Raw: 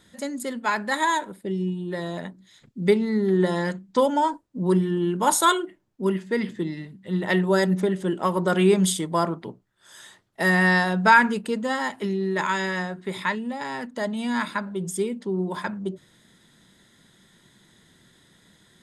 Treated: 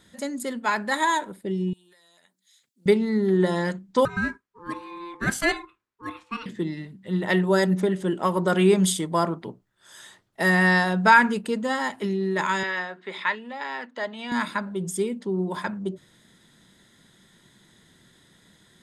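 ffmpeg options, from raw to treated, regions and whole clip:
ffmpeg -i in.wav -filter_complex "[0:a]asettb=1/sr,asplit=3[link_01][link_02][link_03];[link_01]atrim=end=1.734[link_04];[link_02]atrim=start=1.73:end=2.86,asetpts=PTS-STARTPTS,afade=type=in:duration=0.004:curve=qsin,afade=type=out:start_time=1.126:duration=0.004:curve=qsin,aderivative,acompressor=threshold=-54dB:ratio=16:attack=3.2:release=140:knee=1:detection=peak[link_05];[link_03]atrim=start=2.856[link_06];[link_04][link_05]acrossfade=duration=0.004:curve1=hsin:curve2=qsin[link_07];[link_07][link_06]acrossfade=duration=0.004:curve1=qsin:curve2=hsin,asettb=1/sr,asplit=3[link_08][link_09][link_10];[link_08]atrim=end=4.054[link_11];[link_09]atrim=start=4.05:end=6.46,asetpts=PTS-STARTPTS,afade=type=in:duration=0.004:curve=qsin,afade=type=out:start_time=2.406:duration=0.004:curve=qsin,highpass=600,highshelf=frequency=6000:gain=-10,aeval=exprs='val(0)*sin(2*PI*690*n/s)':channel_layout=same[link_12];[link_10]atrim=start=6.456[link_13];[link_11][link_12]acrossfade=duration=0.004:curve1=hsin:curve2=qsin[link_14];[link_14][link_13]acrossfade=duration=0.004:curve1=qsin:curve2=hsin,asettb=1/sr,asplit=3[link_15][link_16][link_17];[link_15]atrim=end=12.634[link_18];[link_16]atrim=start=12.63:end=14.32,asetpts=PTS-STARTPTS,afade=type=in:duration=0.004:curve=qsin,afade=type=out:start_time=1.686:duration=0.004:curve=qsin,highpass=320,lowpass=3300,tiltshelf=frequency=1100:gain=-4.5[link_19];[link_17]atrim=start=14.316[link_20];[link_18][link_19]acrossfade=duration=0.004:curve1=hsin:curve2=qsin[link_21];[link_21][link_20]acrossfade=duration=0.004:curve1=qsin:curve2=hsin" out.wav

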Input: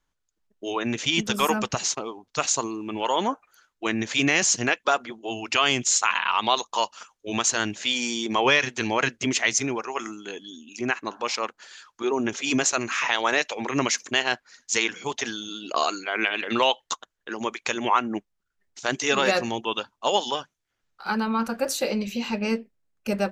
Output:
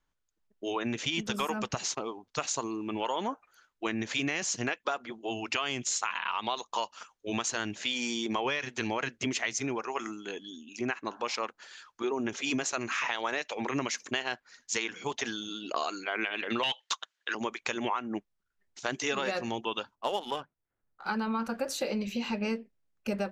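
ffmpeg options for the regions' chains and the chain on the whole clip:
ffmpeg -i in.wav -filter_complex "[0:a]asettb=1/sr,asplit=3[link_01][link_02][link_03];[link_01]atrim=end=16.634[link_04];[link_02]atrim=start=16.63:end=17.35,asetpts=PTS-STARTPTS,afade=type=in:duration=0.004:curve=qsin,afade=type=out:start_time=0.716:duration=0.004:curve=qsin,aderivative,aeval=exprs='0.398*sin(PI/2*6.31*val(0)/0.398)':channel_layout=same,highpass=110,lowpass=3900[link_05];[link_03]atrim=start=17.346[link_06];[link_04][link_05]acrossfade=duration=0.004:curve1=hsin:curve2=qsin[link_07];[link_07][link_06]acrossfade=duration=0.004:curve1=qsin:curve2=hsin,asettb=1/sr,asplit=3[link_08][link_09][link_10];[link_08]atrim=end=19.954[link_11];[link_09]atrim=start=19.95:end=21.06,asetpts=PTS-STARTPTS,afade=type=in:duration=0.004:curve=qsin,afade=type=out:start_time=1.106:duration=0.004:curve=qsin,highshelf=frequency=9800:gain=-11,adynamicsmooth=sensitivity=4:basefreq=1500[link_12];[link_10]atrim=start=21.056[link_13];[link_11][link_12]acrossfade=duration=0.004:curve1=hsin:curve2=qsin[link_14];[link_14][link_13]acrossfade=duration=0.004:curve1=qsin:curve2=hsin,highshelf=frequency=6900:gain=-7.5,acompressor=threshold=-25dB:ratio=6,volume=-2.5dB" out.wav

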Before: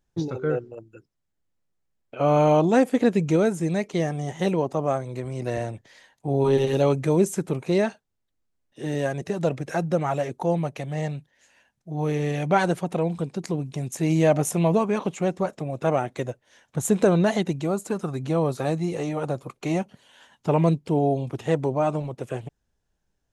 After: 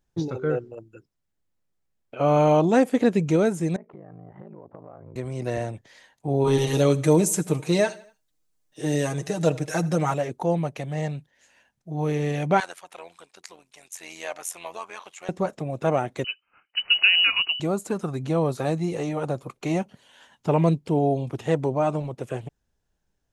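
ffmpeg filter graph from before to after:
ffmpeg -i in.wav -filter_complex "[0:a]asettb=1/sr,asplit=3[link_01][link_02][link_03];[link_01]atrim=end=3.764[link_04];[link_02]atrim=start=3.76:end=5.16,asetpts=PTS-STARTPTS,afade=type=in:duration=0.004:curve=qsin,afade=type=out:start_time=1.396:duration=0.004:curve=qsin,lowpass=frequency=1500:width=0.5412,lowpass=frequency=1500:width=1.3066,acompressor=threshold=-36dB:ratio=20:attack=3.2:release=140:knee=1:detection=peak,aeval=exprs='val(0)*sin(2*PI*27*n/s)':channel_layout=same[link_05];[link_03]atrim=start=5.156[link_06];[link_04][link_05]acrossfade=duration=0.004:curve1=hsin:curve2=qsin[link_07];[link_07][link_06]acrossfade=duration=0.004:curve1=qsin:curve2=hsin,asettb=1/sr,asplit=3[link_08][link_09][link_10];[link_08]atrim=end=6.474[link_11];[link_09]atrim=start=6.47:end=10.14,asetpts=PTS-STARTPTS,afade=type=in:duration=0.004:curve=qsin,afade=type=out:start_time=3.666:duration=0.004:curve=qsin,bass=frequency=250:gain=-2,treble=frequency=4000:gain=8,aecho=1:1:6.5:0.73,atrim=end_sample=161847,aecho=1:1:81|162|243:0.0944|0.0444|0.0209,atrim=end_sample=161847[link_12];[link_10]atrim=start=10.136[link_13];[link_11][link_12]acrossfade=duration=0.004:curve1=hsin:curve2=qsin[link_14];[link_14][link_13]acrossfade=duration=0.004:curve1=qsin:curve2=hsin,asettb=1/sr,asplit=3[link_15][link_16][link_17];[link_15]atrim=end=12.604[link_18];[link_16]atrim=start=12.6:end=15.29,asetpts=PTS-STARTPTS,afade=type=in:duration=0.004:curve=qsin,afade=type=out:start_time=2.686:duration=0.004:curve=qsin,highpass=1200,tremolo=f=88:d=0.71[link_19];[link_17]atrim=start=15.286[link_20];[link_18][link_19]acrossfade=duration=0.004:curve1=hsin:curve2=qsin[link_21];[link_21][link_20]acrossfade=duration=0.004:curve1=qsin:curve2=hsin,asettb=1/sr,asplit=3[link_22][link_23][link_24];[link_22]atrim=end=16.244[link_25];[link_23]atrim=start=16.24:end=17.6,asetpts=PTS-STARTPTS,afade=type=in:duration=0.004:curve=qsin,afade=type=out:start_time=1.356:duration=0.004:curve=qsin,agate=range=-9dB:threshold=-57dB:ratio=16:release=100:detection=peak,lowpass=frequency=2600:width_type=q:width=0.5098,lowpass=frequency=2600:width_type=q:width=0.6013,lowpass=frequency=2600:width_type=q:width=0.9,lowpass=frequency=2600:width_type=q:width=2.563,afreqshift=-3100[link_26];[link_24]atrim=start=17.596[link_27];[link_25][link_26]acrossfade=duration=0.004:curve1=hsin:curve2=qsin[link_28];[link_28][link_27]acrossfade=duration=0.004:curve1=qsin:curve2=hsin" out.wav

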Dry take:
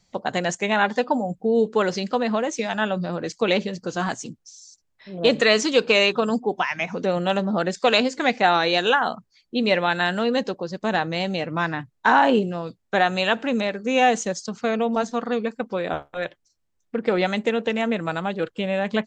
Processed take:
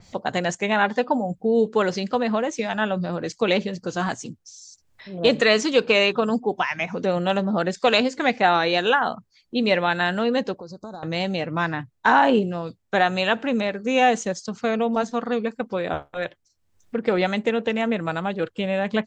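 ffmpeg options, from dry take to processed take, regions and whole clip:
ffmpeg -i in.wav -filter_complex "[0:a]asettb=1/sr,asplit=3[link_01][link_02][link_03];[link_01]atrim=end=10.594[link_04];[link_02]atrim=start=10.59:end=11.03,asetpts=PTS-STARTPTS,afade=type=in:duration=0.004:curve=qsin,afade=type=out:start_time=0.436:duration=0.004:curve=qsin,acompressor=threshold=-36dB:ratio=3:attack=3.2:release=140:knee=1:detection=peak,asuperstop=centerf=2400:order=12:qfactor=0.96[link_05];[link_03]atrim=start=11.026[link_06];[link_04][link_05]acrossfade=duration=0.004:curve1=hsin:curve2=qsin[link_07];[link_07][link_06]acrossfade=duration=0.004:curve1=qsin:curve2=hsin,equalizer=frequency=92:width_type=o:width=0.64:gain=7.5,acompressor=mode=upward:threshold=-39dB:ratio=2.5,adynamicequalizer=threshold=0.0141:dfrequency=3800:dqfactor=0.7:tfrequency=3800:tqfactor=0.7:attack=5:release=100:ratio=0.375:range=3:mode=cutabove:tftype=highshelf" out.wav

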